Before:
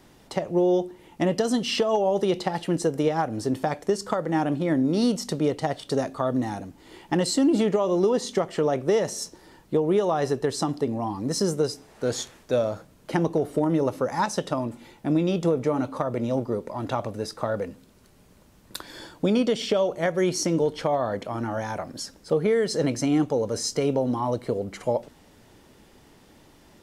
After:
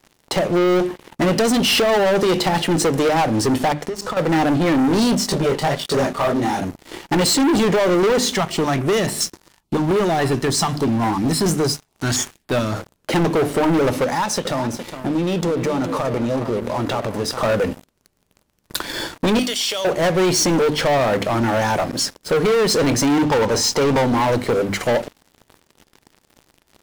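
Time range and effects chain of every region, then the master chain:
0:03.72–0:04.17: high-shelf EQ 10,000 Hz −9.5 dB + downward compressor 12 to 1, threshold −36 dBFS
0:05.15–0:06.62: comb filter 5.1 ms, depth 39% + micro pitch shift up and down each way 47 cents
0:08.36–0:12.75: parametric band 510 Hz −13 dB 0.45 octaves + notch on a step sequencer 7.1 Hz 310–6,100 Hz
0:14.04–0:17.42: downward compressor 2.5 to 1, threshold −34 dBFS + single-tap delay 413 ms −11 dB
0:19.39–0:19.85: first difference + envelope flattener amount 50%
0:23.24–0:24.07: low-pass filter 6,900 Hz + parametric band 900 Hz +13.5 dB 0.36 octaves
whole clip: mains-hum notches 50/100/150/200/250/300 Hz; dynamic equaliser 2,400 Hz, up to +3 dB, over −46 dBFS, Q 0.85; leveller curve on the samples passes 5; level −3.5 dB

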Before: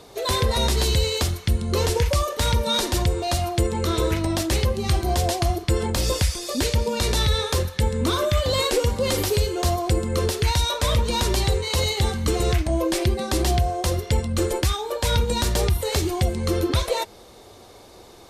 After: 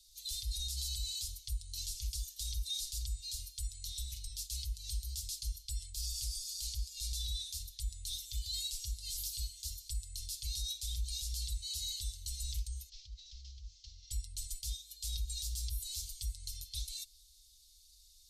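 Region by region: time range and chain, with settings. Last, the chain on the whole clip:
0:12.89–0:14.11: variable-slope delta modulation 32 kbit/s + downward compressor 12 to 1, threshold −27 dBFS + highs frequency-modulated by the lows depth 0.13 ms
whole clip: inverse Chebyshev band-stop filter 180–1,400 Hz, stop band 60 dB; comb filter 6.2 ms, depth 52%; brickwall limiter −20.5 dBFS; level −8.5 dB

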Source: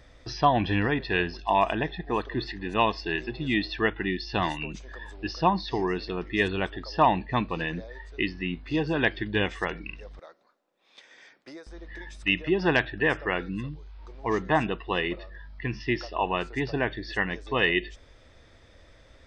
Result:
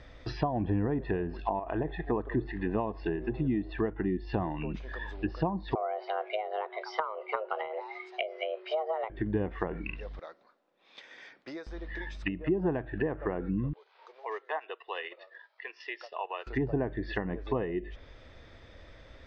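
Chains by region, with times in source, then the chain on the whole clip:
0:01.59–0:02.08: parametric band 200 Hz −14 dB 0.36 octaves + downward compressor 4 to 1, threshold −25 dBFS
0:05.75–0:09.10: low-shelf EQ 210 Hz −10.5 dB + frequency shifter +320 Hz
0:13.73–0:16.47: Butterworth high-pass 420 Hz 48 dB per octave + downward compressor 1.5 to 1, threshold −55 dBFS + transient designer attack +1 dB, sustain −9 dB
whole clip: downward compressor 8 to 1, threshold −26 dBFS; treble cut that deepens with the level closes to 690 Hz, closed at −28 dBFS; low-pass filter 4,400 Hz 12 dB per octave; level +2.5 dB

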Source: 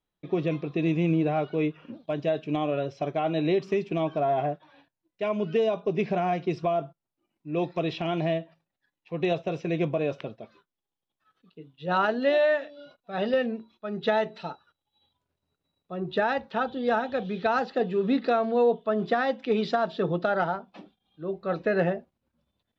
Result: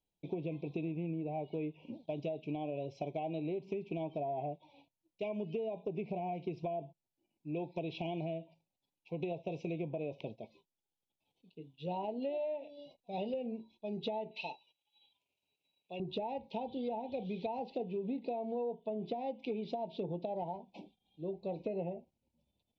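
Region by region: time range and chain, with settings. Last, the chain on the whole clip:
0:14.31–0:16.00: high-pass filter 520 Hz 6 dB per octave + parametric band 2,600 Hz +13.5 dB 0.88 octaves
whole clip: treble cut that deepens with the level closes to 2,000 Hz, closed at −21.5 dBFS; elliptic band-stop filter 930–2,300 Hz, stop band 40 dB; downward compressor, threshold −31 dBFS; level −4 dB

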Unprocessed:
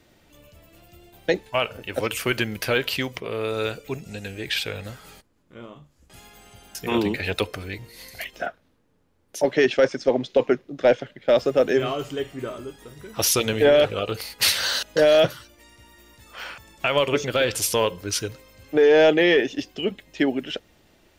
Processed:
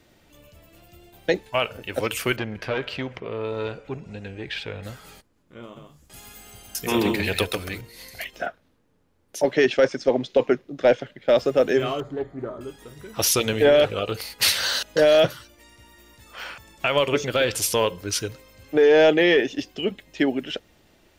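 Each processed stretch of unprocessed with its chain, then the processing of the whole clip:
0:02.36–0:04.83: head-to-tape spacing loss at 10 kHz 21 dB + delay with a band-pass on its return 60 ms, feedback 73%, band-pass 1,100 Hz, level −19 dB + saturating transformer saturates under 720 Hz
0:05.63–0:07.81: high-shelf EQ 6,600 Hz +9.5 dB + single-tap delay 134 ms −5 dB
0:12.00–0:12.61: moving average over 16 samples + highs frequency-modulated by the lows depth 0.18 ms
whole clip: no processing

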